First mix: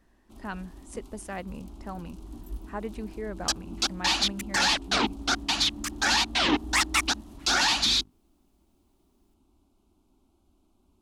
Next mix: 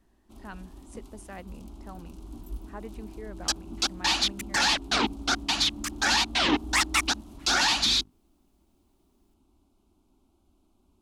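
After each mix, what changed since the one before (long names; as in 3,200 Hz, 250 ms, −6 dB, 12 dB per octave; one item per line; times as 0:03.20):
speech −6.5 dB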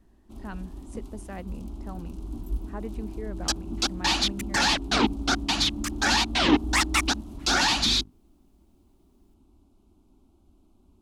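master: add low-shelf EQ 490 Hz +7.5 dB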